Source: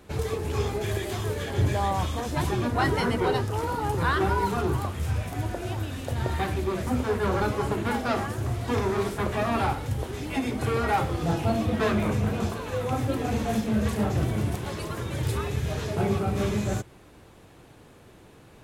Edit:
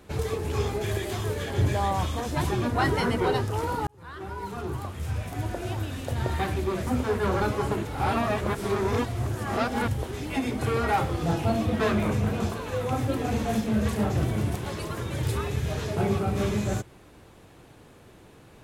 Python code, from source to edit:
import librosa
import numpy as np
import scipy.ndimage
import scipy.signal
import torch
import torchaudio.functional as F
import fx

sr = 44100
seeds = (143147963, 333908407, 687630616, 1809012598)

y = fx.edit(x, sr, fx.fade_in_span(start_s=3.87, length_s=1.73),
    fx.reverse_span(start_s=7.85, length_s=2.03), tone=tone)